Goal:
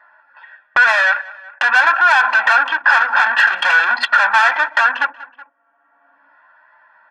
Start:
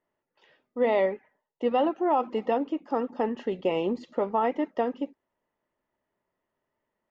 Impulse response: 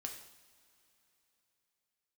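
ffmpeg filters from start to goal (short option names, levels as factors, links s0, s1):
-filter_complex "[0:a]aresample=11025,aeval=exprs='clip(val(0),-1,0.0531)':c=same,aresample=44100,acompressor=threshold=0.0126:ratio=16,flanger=delay=2.9:depth=4:regen=79:speed=0.44:shape=sinusoidal,agate=range=0.0316:threshold=0.00112:ratio=16:detection=peak,asplit=2[s0][s1];[1:a]atrim=start_sample=2205,asetrate=70560,aresample=44100,lowpass=2700[s2];[s1][s2]afir=irnorm=-1:irlink=0,volume=0.473[s3];[s0][s3]amix=inputs=2:normalize=0,asplit=2[s4][s5];[s5]highpass=f=720:p=1,volume=56.2,asoftclip=type=tanh:threshold=0.0473[s6];[s4][s6]amix=inputs=2:normalize=0,lowpass=f=3300:p=1,volume=0.501,anlmdn=0.251,highpass=f=1400:t=q:w=9.3,aecho=1:1:1.2:0.97,asplit=2[s7][s8];[s8]adelay=186,lowpass=f=3300:p=1,volume=0.075,asplit=2[s9][s10];[s10]adelay=186,lowpass=f=3300:p=1,volume=0.32[s11];[s7][s9][s11]amix=inputs=3:normalize=0,acompressor=mode=upward:threshold=0.0251:ratio=2.5,alimiter=level_in=10.6:limit=0.891:release=50:level=0:latency=1,volume=0.841"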